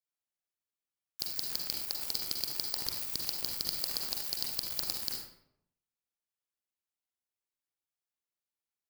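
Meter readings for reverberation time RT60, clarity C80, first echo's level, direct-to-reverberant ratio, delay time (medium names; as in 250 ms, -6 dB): 0.75 s, 6.5 dB, no echo, 2.0 dB, no echo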